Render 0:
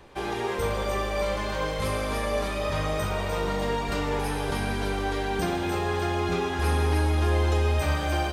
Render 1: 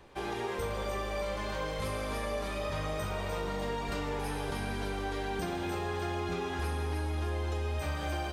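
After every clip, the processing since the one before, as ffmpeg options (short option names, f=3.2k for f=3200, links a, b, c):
-af "acompressor=threshold=-25dB:ratio=6,volume=-5dB"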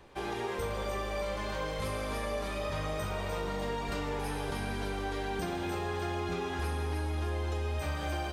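-af anull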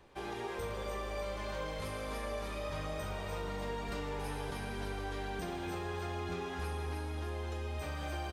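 -af "aecho=1:1:287:0.299,volume=-5dB"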